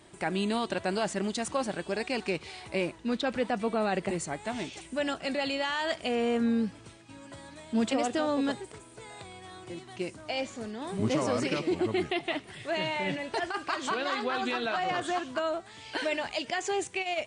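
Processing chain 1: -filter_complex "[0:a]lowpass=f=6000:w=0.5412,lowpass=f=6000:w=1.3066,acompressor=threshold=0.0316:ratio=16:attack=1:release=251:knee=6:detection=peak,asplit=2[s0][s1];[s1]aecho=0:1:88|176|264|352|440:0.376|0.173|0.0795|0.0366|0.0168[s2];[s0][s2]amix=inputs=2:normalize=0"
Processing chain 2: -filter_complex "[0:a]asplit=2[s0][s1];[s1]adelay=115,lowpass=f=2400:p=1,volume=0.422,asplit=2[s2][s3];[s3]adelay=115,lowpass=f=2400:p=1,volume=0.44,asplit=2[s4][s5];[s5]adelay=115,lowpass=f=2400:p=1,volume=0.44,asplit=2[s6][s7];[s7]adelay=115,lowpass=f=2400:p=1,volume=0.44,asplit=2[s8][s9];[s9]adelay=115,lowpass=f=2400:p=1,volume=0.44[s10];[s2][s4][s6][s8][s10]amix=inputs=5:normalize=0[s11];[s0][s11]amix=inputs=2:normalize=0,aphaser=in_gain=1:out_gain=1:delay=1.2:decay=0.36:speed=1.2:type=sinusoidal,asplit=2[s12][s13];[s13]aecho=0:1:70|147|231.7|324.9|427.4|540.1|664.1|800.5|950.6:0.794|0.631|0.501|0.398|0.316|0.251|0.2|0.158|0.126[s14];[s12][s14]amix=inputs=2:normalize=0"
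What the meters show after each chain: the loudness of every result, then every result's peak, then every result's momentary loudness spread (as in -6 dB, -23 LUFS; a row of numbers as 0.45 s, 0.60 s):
-37.5 LUFS, -25.5 LUFS; -24.5 dBFS, -9.5 dBFS; 8 LU, 9 LU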